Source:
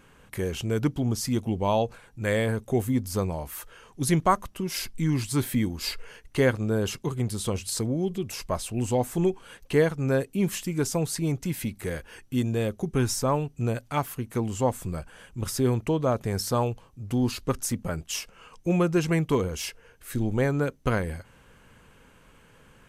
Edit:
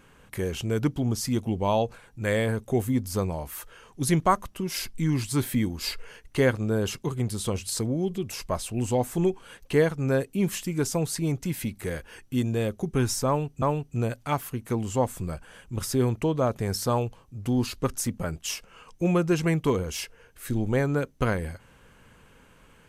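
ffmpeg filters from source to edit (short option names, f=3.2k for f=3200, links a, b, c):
-filter_complex "[0:a]asplit=2[a][b];[a]atrim=end=13.622[c];[b]atrim=start=13.268[d];[c][d]acrossfade=d=0.004:c1=hsin:c2=hsin"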